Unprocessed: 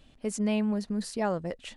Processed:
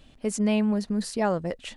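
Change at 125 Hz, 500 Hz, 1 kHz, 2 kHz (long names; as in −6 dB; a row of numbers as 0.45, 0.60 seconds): +4.0, +4.0, +4.0, +4.0 decibels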